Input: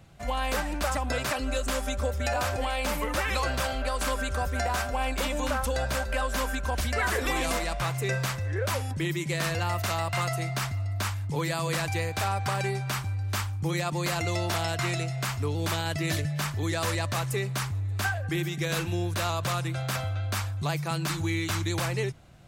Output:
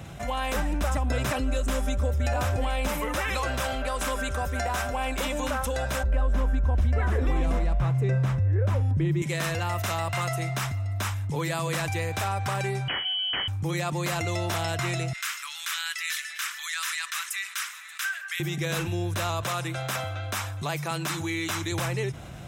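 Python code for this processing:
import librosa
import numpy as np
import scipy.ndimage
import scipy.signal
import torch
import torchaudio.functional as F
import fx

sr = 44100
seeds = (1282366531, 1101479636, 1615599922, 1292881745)

y = fx.low_shelf(x, sr, hz=290.0, db=10.5, at=(0.55, 2.88))
y = fx.tilt_eq(y, sr, slope=-4.0, at=(6.03, 9.22))
y = fx.freq_invert(y, sr, carrier_hz=3100, at=(12.88, 13.48))
y = fx.steep_highpass(y, sr, hz=1300.0, slope=36, at=(15.13, 18.4))
y = fx.highpass(y, sr, hz=250.0, slope=6, at=(19.41, 21.72))
y = scipy.signal.sosfilt(scipy.signal.butter(2, 44.0, 'highpass', fs=sr, output='sos'), y)
y = fx.notch(y, sr, hz=4500.0, q=7.1)
y = fx.env_flatten(y, sr, amount_pct=50)
y = F.gain(torch.from_numpy(y), -7.5).numpy()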